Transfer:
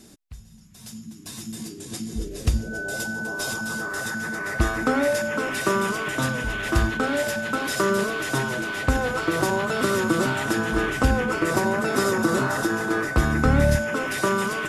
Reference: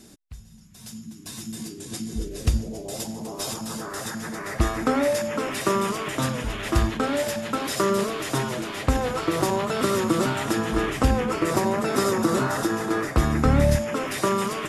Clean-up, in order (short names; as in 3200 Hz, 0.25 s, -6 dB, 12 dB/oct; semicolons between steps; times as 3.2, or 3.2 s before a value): notch 1500 Hz, Q 30